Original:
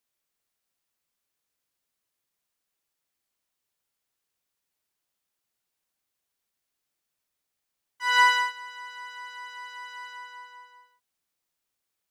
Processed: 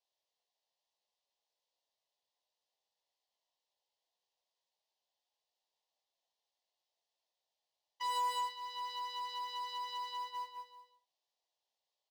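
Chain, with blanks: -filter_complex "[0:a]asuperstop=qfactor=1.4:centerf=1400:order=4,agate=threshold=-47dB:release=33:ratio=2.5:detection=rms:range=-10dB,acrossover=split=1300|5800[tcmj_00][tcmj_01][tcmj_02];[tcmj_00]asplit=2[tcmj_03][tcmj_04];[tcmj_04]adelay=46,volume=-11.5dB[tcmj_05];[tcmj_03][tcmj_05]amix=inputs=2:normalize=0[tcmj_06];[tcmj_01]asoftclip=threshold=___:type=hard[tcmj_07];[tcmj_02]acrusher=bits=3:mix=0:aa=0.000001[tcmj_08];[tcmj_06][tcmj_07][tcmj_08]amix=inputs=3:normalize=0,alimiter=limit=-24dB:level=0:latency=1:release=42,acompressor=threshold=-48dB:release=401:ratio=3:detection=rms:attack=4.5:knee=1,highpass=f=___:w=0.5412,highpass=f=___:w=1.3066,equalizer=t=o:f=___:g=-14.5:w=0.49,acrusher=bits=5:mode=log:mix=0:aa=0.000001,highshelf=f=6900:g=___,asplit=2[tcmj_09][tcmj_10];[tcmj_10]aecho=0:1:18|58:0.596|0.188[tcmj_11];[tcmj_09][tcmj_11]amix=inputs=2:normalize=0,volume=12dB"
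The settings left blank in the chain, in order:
-34dB, 550, 550, 2300, -6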